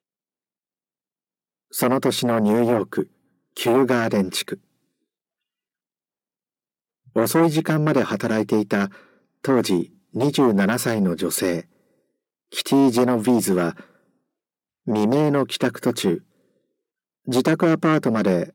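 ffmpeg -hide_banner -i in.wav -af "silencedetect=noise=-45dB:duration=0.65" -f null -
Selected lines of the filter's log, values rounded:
silence_start: 0.00
silence_end: 1.72 | silence_duration: 1.72
silence_start: 4.58
silence_end: 7.07 | silence_duration: 2.49
silence_start: 11.64
silence_end: 12.52 | silence_duration: 0.89
silence_start: 13.91
silence_end: 14.87 | silence_duration: 0.96
silence_start: 16.21
silence_end: 17.27 | silence_duration: 1.06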